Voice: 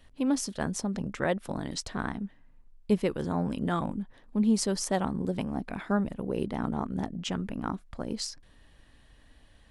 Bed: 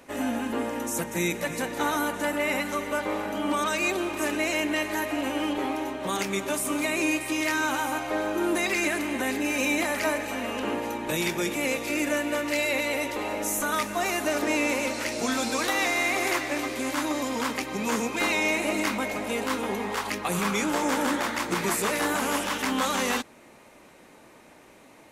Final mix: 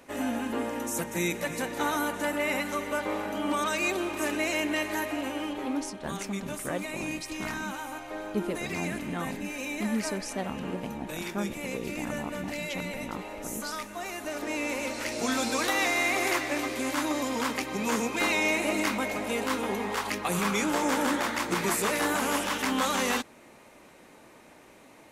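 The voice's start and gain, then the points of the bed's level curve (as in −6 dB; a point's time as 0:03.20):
5.45 s, −5.5 dB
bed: 0:04.99 −2 dB
0:05.98 −9.5 dB
0:14.17 −9.5 dB
0:15.33 −1 dB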